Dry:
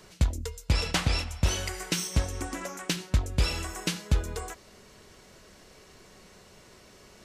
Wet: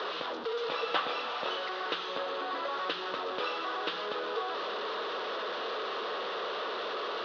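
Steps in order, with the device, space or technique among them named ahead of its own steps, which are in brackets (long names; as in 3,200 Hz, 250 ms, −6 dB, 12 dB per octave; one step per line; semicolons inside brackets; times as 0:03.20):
digital answering machine (band-pass filter 320–3,200 Hz; linear delta modulator 32 kbit/s, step −30 dBFS; loudspeaker in its box 410–3,900 Hz, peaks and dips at 470 Hz +7 dB, 1,200 Hz +8 dB, 2,200 Hz −10 dB, 3,600 Hz +5 dB)
0:01.95–0:02.71: notch filter 5,500 Hz, Q 11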